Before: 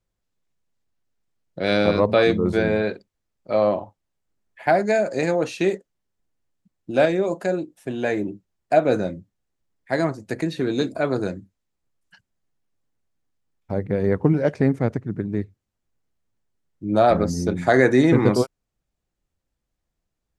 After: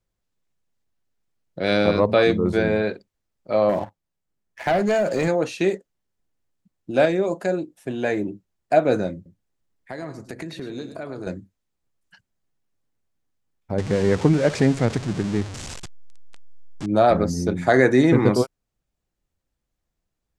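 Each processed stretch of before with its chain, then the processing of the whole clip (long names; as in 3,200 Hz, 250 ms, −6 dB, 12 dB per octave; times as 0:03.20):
0:03.69–0:05.28: parametric band 170 Hz +5.5 dB 0.27 octaves + leveller curve on the samples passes 2 + downward compressor 2.5 to 1, threshold −20 dBFS
0:09.15–0:11.27: downward compressor 5 to 1, threshold −30 dBFS + single-tap delay 106 ms −10.5 dB
0:13.78–0:16.86: converter with a step at zero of −29 dBFS + low-pass filter 8,100 Hz 24 dB per octave + high-shelf EQ 2,700 Hz +8 dB
whole clip: no processing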